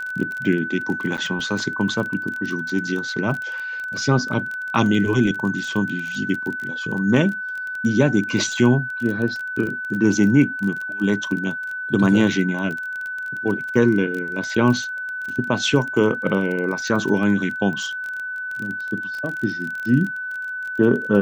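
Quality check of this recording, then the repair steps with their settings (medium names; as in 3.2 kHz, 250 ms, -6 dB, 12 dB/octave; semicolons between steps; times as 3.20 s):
crackle 22 per s -26 dBFS
whine 1.5 kHz -26 dBFS
1.17–1.18 s: dropout 7.8 ms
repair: de-click; band-stop 1.5 kHz, Q 30; interpolate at 1.17 s, 7.8 ms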